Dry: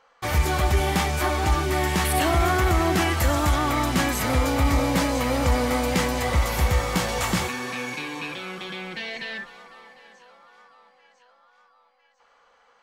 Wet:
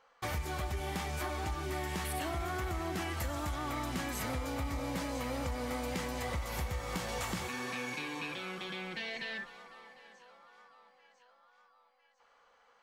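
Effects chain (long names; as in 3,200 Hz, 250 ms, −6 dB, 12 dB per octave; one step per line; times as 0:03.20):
downward compressor, threshold −27 dBFS, peak gain reduction 11 dB
level −6.5 dB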